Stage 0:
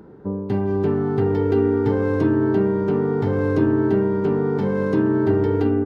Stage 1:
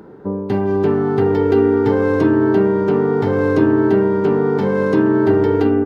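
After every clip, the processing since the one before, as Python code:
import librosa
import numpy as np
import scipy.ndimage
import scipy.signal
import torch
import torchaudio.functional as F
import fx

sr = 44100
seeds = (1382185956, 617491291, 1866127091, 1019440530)

y = fx.low_shelf(x, sr, hz=190.0, db=-9.0)
y = y * 10.0 ** (7.0 / 20.0)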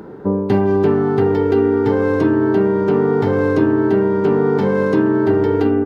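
y = fx.rider(x, sr, range_db=5, speed_s=0.5)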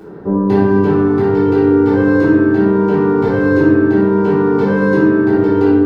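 y = fx.room_shoebox(x, sr, seeds[0], volume_m3=410.0, walls='mixed', distance_m=3.5)
y = y * 10.0 ** (-7.0 / 20.0)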